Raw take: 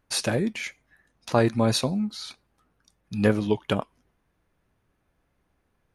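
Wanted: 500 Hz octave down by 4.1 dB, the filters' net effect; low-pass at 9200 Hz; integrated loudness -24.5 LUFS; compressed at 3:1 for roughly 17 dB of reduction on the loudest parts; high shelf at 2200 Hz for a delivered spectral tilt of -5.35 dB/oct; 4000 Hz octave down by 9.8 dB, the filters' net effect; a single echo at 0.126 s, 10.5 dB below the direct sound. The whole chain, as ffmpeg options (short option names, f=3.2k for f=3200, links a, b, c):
-af "lowpass=9.2k,equalizer=f=500:t=o:g=-4.5,highshelf=f=2.2k:g=-6.5,equalizer=f=4k:t=o:g=-5.5,acompressor=threshold=-42dB:ratio=3,aecho=1:1:126:0.299,volume=18dB"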